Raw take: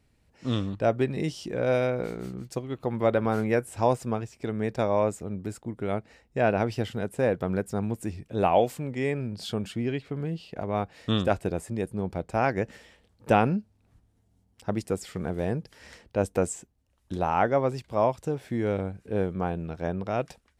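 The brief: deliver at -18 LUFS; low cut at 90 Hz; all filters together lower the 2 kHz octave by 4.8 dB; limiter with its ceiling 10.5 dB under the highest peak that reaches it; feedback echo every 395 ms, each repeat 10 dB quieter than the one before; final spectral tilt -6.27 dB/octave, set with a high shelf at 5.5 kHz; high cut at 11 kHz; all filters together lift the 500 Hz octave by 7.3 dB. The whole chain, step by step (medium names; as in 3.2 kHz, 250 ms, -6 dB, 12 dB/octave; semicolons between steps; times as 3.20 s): high-pass 90 Hz; low-pass 11 kHz; peaking EQ 500 Hz +9 dB; peaking EQ 2 kHz -6.5 dB; treble shelf 5.5 kHz -8 dB; peak limiter -14 dBFS; feedback delay 395 ms, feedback 32%, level -10 dB; trim +8.5 dB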